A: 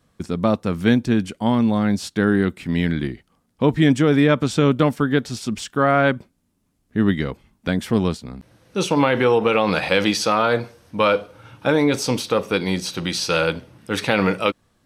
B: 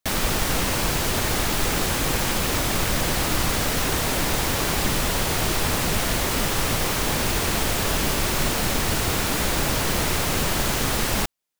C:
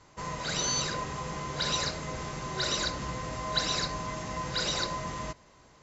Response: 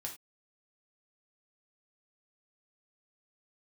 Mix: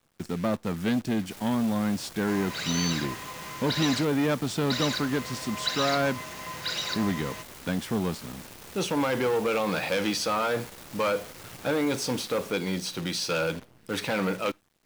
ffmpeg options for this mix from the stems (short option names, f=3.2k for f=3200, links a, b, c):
-filter_complex "[0:a]asoftclip=type=tanh:threshold=-15.5dB,volume=-5.5dB,asplit=2[a][b];[b]volume=-19.5dB[c];[1:a]asoftclip=type=tanh:threshold=-26.5dB,adelay=1250,volume=-16dB[d];[2:a]equalizer=f=2.6k:t=o:w=2.5:g=10.5,adelay=2100,volume=-8dB,asplit=3[e][f][g];[e]atrim=end=4.05,asetpts=PTS-STARTPTS,afade=t=out:st=4.046:d=0.004:c=hsin[h];[f]atrim=start=4.05:end=4.7,asetpts=PTS-STARTPTS,volume=0[i];[g]atrim=start=4.7,asetpts=PTS-STARTPTS,afade=t=in:d=0.004:c=hsin[j];[h][i][j]concat=n=3:v=0:a=1[k];[3:a]atrim=start_sample=2205[l];[c][l]afir=irnorm=-1:irlink=0[m];[a][d][k][m]amix=inputs=4:normalize=0,highpass=92,acrusher=bits=8:dc=4:mix=0:aa=0.000001"